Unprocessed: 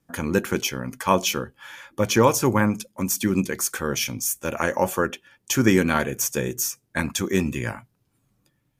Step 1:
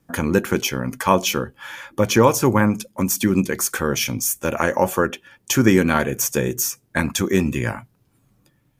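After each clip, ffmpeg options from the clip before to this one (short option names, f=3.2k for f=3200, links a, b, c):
-filter_complex "[0:a]equalizer=f=6.1k:w=0.33:g=-3,asplit=2[a][b];[b]acompressor=threshold=-28dB:ratio=6,volume=0dB[c];[a][c]amix=inputs=2:normalize=0,volume=1.5dB"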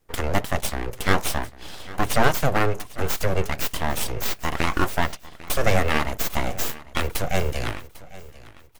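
-filter_complex "[0:a]acrossover=split=120[a][b];[b]aeval=exprs='abs(val(0))':c=same[c];[a][c]amix=inputs=2:normalize=0,aecho=1:1:798|1596|2394:0.112|0.0404|0.0145,volume=-1dB"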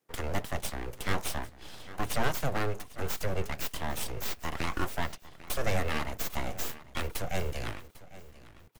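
-filter_complex "[0:a]acrossover=split=140|2700[a][b][c];[a]acrusher=bits=5:dc=4:mix=0:aa=0.000001[d];[b]asoftclip=type=tanh:threshold=-15.5dB[e];[d][e][c]amix=inputs=3:normalize=0,volume=-8.5dB"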